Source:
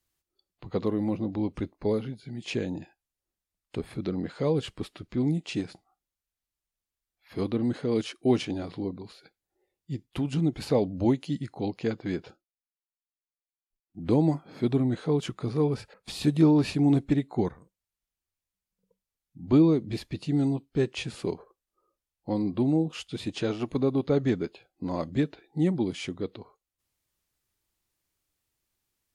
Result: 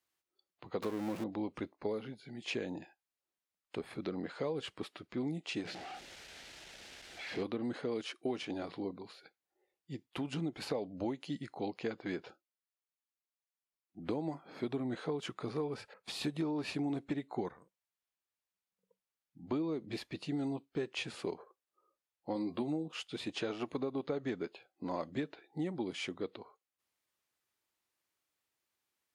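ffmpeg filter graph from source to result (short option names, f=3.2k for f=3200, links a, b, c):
-filter_complex "[0:a]asettb=1/sr,asplit=3[a][b][c];[a]atrim=end=0.824[d];[b]atrim=start=0.82:end=1.24,asetpts=PTS-STARTPTS,afade=t=in:d=0.004:c=qsin,afade=t=out:st=0.416:d=0.004:c=qsin,aeval=exprs='val(0)+0.5*0.0211*sgn(val(0))':c=same,highshelf=f=5.9k:g=4.5[e];[c]atrim=start=1.236[f];[d][e]acrossfade=d=0.004:c1=hsin:c2=qsin[g];[g][f]acrossfade=d=0.004:c1=qsin:c2=hsin,asettb=1/sr,asplit=3[h][i][j];[h]atrim=end=5.654[k];[i]atrim=start=5.65:end=7.43,asetpts=PTS-STARTPTS,afade=t=in:d=0.004:c=qsin,afade=t=out:st=1.776:d=0.004:c=qsin,aeval=exprs='val(0)+0.5*0.02*sgn(val(0))':c=same,lowpass=5.1k,equalizer=f=1.1k:t=o:w=0.5:g=-12.5[l];[j]atrim=start=7.426[m];[k][l]acrossfade=d=0.004:c1=hsin:c2=qsin[n];[n][m]acrossfade=d=0.004:c1=qsin:c2=hsin,asettb=1/sr,asplit=3[o][p][q];[o]atrim=end=22.344[r];[p]atrim=start=22.34:end=22.88,asetpts=PTS-STARTPTS,afade=t=in:d=0.004:c=qsin,afade=t=out:st=0.536:d=0.004:c=qsin,highshelf=f=4.2k:g=7,asplit=2[s][t];[t]adelay=13,volume=-6dB[u];[s][u]amix=inputs=2:normalize=0,atrim=end_sample=23814[v];[q]atrim=start=22.876[w];[r][v]acrossfade=d=0.004:c1=hsin:c2=qsin[x];[x][w]acrossfade=d=0.004:c1=qsin:c2=hsin,highpass=f=630:p=1,highshelf=f=3.6k:g=-8.5,acompressor=threshold=-33dB:ratio=10,volume=1dB"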